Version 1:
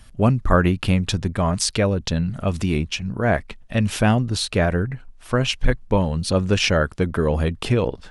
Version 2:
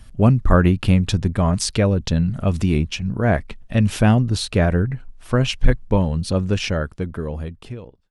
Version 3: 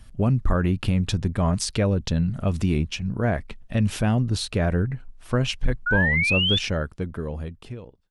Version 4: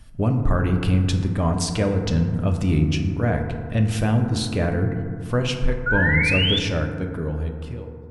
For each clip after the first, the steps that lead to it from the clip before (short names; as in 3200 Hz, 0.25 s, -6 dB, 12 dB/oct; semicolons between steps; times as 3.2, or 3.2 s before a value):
ending faded out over 2.44 s; low shelf 360 Hz +6 dB; gain -1.5 dB
limiter -8.5 dBFS, peak gain reduction 7 dB; painted sound rise, 5.86–6.59, 1400–3600 Hz -19 dBFS; gain -3.5 dB
FDN reverb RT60 2.1 s, low-frequency decay 1.25×, high-frequency decay 0.3×, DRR 3.5 dB